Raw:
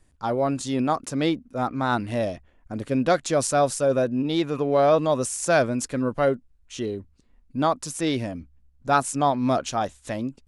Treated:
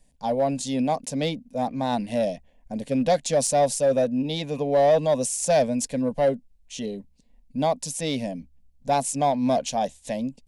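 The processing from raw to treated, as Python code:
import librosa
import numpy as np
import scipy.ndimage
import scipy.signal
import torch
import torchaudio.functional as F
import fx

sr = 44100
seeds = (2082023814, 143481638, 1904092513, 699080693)

p1 = fx.fixed_phaser(x, sr, hz=350.0, stages=6)
p2 = np.clip(p1, -10.0 ** (-20.5 / 20.0), 10.0 ** (-20.5 / 20.0))
p3 = p1 + (p2 * librosa.db_to_amplitude(-3.5))
y = p3 * librosa.db_to_amplitude(-2.0)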